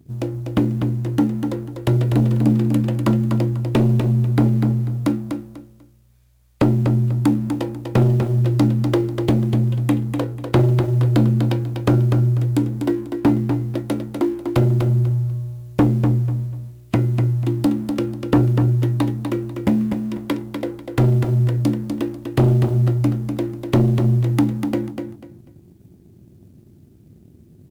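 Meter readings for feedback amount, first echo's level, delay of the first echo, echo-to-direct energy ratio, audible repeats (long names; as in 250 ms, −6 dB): 24%, −6.5 dB, 246 ms, −6.0 dB, 3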